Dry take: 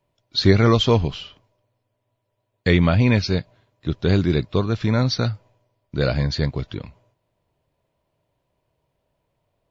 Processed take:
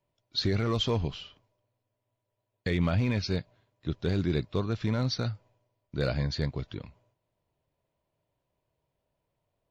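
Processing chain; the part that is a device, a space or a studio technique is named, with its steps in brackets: limiter into clipper (limiter -9 dBFS, peak gain reduction 7.5 dB; hard clip -10.5 dBFS, distortion -29 dB); gain -8 dB

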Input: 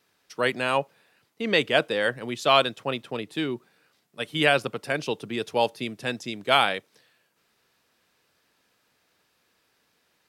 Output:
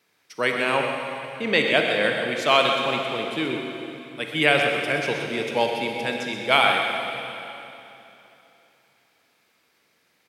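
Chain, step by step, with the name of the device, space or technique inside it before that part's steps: PA in a hall (HPF 110 Hz; bell 2200 Hz +7.5 dB 0.22 oct; echo 0.127 s -9.5 dB; reverb RT60 3.1 s, pre-delay 36 ms, DRR 2.5 dB)

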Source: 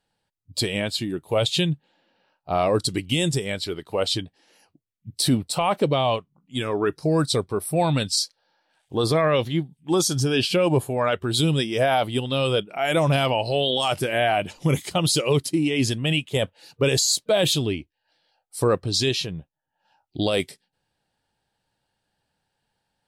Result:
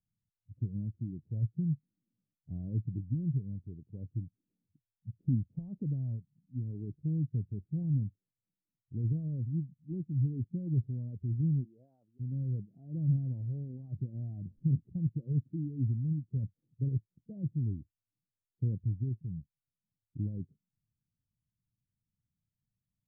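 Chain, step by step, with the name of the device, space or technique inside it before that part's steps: 11.63–12.19 HPF 540 Hz -> 1400 Hz 12 dB/oct; the neighbour's flat through the wall (LPF 220 Hz 24 dB/oct; bell 110 Hz +6 dB 0.57 oct); gain -7.5 dB

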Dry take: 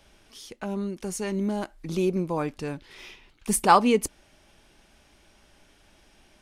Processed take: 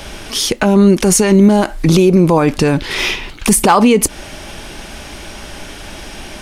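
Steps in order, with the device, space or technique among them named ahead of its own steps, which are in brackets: loud club master (compressor 2.5:1, threshold -28 dBFS, peak gain reduction 11 dB; hard clip -18.5 dBFS, distortion -28 dB; maximiser +29 dB); gain -1 dB

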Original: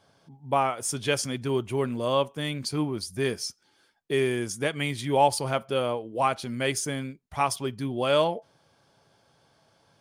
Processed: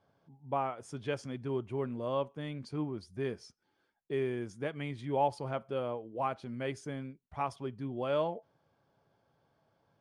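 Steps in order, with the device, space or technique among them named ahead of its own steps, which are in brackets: through cloth (LPF 8900 Hz 12 dB/oct; high shelf 3000 Hz -17 dB); gain -7.5 dB

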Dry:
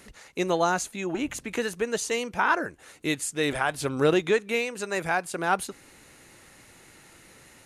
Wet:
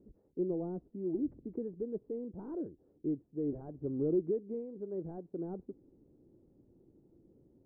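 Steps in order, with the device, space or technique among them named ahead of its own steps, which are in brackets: overdriven synthesiser ladder filter (soft clip -18 dBFS, distortion -15 dB; ladder low-pass 430 Hz, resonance 40%)

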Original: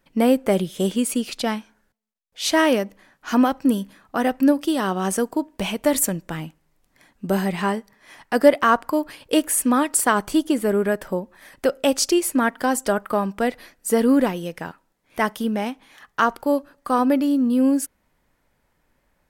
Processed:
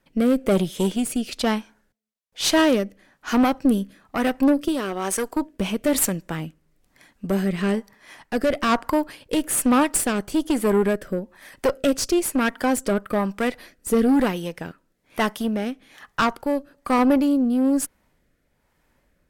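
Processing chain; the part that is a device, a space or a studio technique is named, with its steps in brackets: overdriven rotary cabinet (tube stage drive 17 dB, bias 0.5; rotary speaker horn 1.1 Hz); 4.68–5.37 bell 160 Hz -12 dB 1.2 oct; gain +5 dB

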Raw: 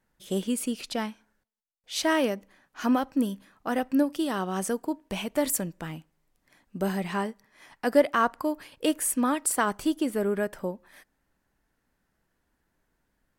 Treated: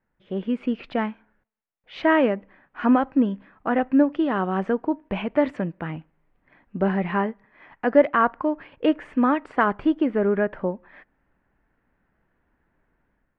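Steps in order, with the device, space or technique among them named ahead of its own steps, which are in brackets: 5.35–5.96 HPF 56 Hz; action camera in a waterproof case (LPF 2400 Hz 24 dB/oct; AGC gain up to 8 dB; gain -2 dB; AAC 96 kbps 48000 Hz)

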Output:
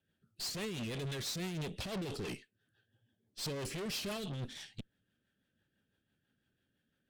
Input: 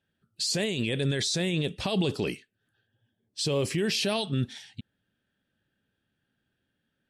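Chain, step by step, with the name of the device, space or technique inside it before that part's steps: overdriven rotary cabinet (tube stage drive 39 dB, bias 0.65; rotary speaker horn 6 Hz); gain +3 dB

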